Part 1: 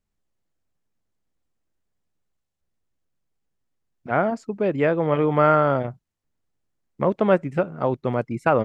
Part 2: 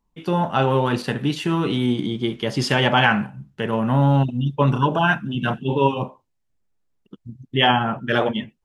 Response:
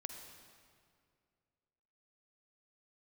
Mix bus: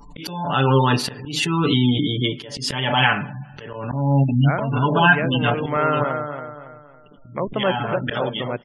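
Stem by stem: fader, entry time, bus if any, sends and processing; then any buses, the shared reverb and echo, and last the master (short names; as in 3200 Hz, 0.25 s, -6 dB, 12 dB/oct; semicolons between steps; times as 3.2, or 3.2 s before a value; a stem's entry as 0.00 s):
-9.0 dB, 0.35 s, send -17.5 dB, echo send -7 dB, high shelf 2100 Hz +10 dB
-3.0 dB, 0.00 s, send -12.5 dB, no echo send, comb 6.9 ms, depth 77%; auto swell 0.476 s; backwards sustainer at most 44 dB/s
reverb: on, RT60 2.2 s, pre-delay 42 ms
echo: feedback echo 0.278 s, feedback 37%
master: spectral gate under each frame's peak -30 dB strong; high shelf 3200 Hz +9.5 dB; AGC gain up to 3 dB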